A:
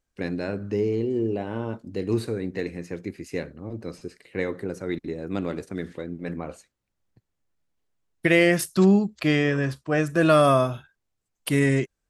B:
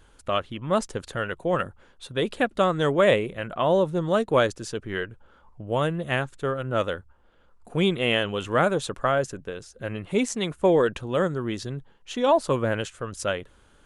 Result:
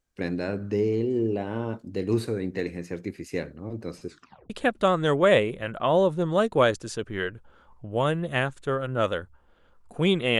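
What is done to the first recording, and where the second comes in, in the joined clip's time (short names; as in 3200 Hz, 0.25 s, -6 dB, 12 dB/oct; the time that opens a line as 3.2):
A
4.08 tape stop 0.42 s
4.5 switch to B from 2.26 s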